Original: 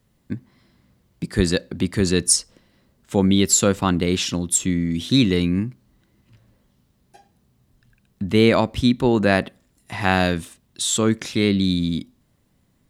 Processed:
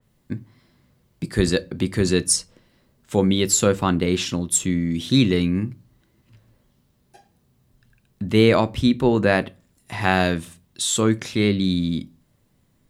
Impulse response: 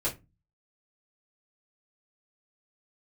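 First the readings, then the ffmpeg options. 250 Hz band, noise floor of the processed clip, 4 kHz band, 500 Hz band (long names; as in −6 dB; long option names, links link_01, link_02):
−1.0 dB, −64 dBFS, −1.5 dB, +0.5 dB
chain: -filter_complex "[0:a]asplit=2[link_01][link_02];[1:a]atrim=start_sample=2205,highshelf=frequency=10000:gain=12[link_03];[link_02][link_03]afir=irnorm=-1:irlink=0,volume=-18.5dB[link_04];[link_01][link_04]amix=inputs=2:normalize=0,adynamicequalizer=threshold=0.0141:dfrequency=3200:dqfactor=0.7:tfrequency=3200:tqfactor=0.7:attack=5:release=100:ratio=0.375:range=2:mode=cutabove:tftype=highshelf,volume=-1dB"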